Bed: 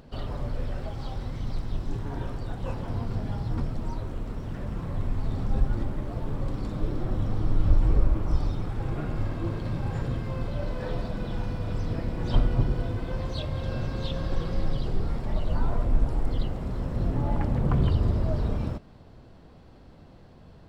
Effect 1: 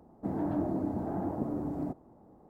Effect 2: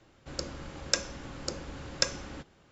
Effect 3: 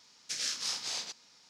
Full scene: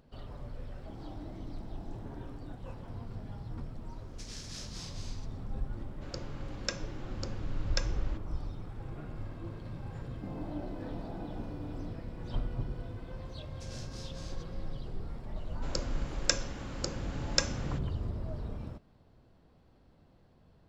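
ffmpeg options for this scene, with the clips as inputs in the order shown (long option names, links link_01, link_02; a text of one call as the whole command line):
ffmpeg -i bed.wav -i cue0.wav -i cue1.wav -i cue2.wav -filter_complex "[1:a]asplit=2[link_01][link_02];[3:a]asplit=2[link_03][link_04];[2:a]asplit=2[link_05][link_06];[0:a]volume=-12dB[link_07];[link_03]aecho=1:1:195.3|244.9:0.562|0.631[link_08];[link_05]lowpass=5500[link_09];[link_02]flanger=delay=16.5:depth=3.9:speed=1.5[link_10];[link_01]atrim=end=2.49,asetpts=PTS-STARTPTS,volume=-16dB,afade=type=in:duration=0.004:curve=hsin,afade=type=out:start_time=2.486:duration=0.004:curve=hsin,adelay=640[link_11];[link_08]atrim=end=1.49,asetpts=PTS-STARTPTS,volume=-13.5dB,afade=type=in:duration=0.004:curve=hsin,afade=type=out:start_time=1.486:duration=0.004:curve=hsin,adelay=171549S[link_12];[link_09]atrim=end=2.71,asetpts=PTS-STARTPTS,volume=-5.5dB,afade=type=in:duration=0.004:curve=hsin,afade=type=out:start_time=2.706:duration=0.004:curve=hsin,adelay=5750[link_13];[link_10]atrim=end=2.49,asetpts=PTS-STARTPTS,volume=-7dB,afade=type=in:duration=0.004:curve=hsin,afade=type=out:start_time=2.486:duration=0.004:curve=hsin,adelay=9980[link_14];[link_04]atrim=end=1.49,asetpts=PTS-STARTPTS,volume=-17dB,afade=type=in:duration=0.004:curve=hsin,afade=type=out:start_time=1.486:duration=0.004:curve=hsin,adelay=13310[link_15];[link_06]atrim=end=2.71,asetpts=PTS-STARTPTS,volume=-0.5dB,afade=type=in:duration=0.004:curve=hsin,afade=type=out:start_time=2.706:duration=0.004:curve=hsin,adelay=15360[link_16];[link_07][link_11][link_12][link_13][link_14][link_15][link_16]amix=inputs=7:normalize=0" out.wav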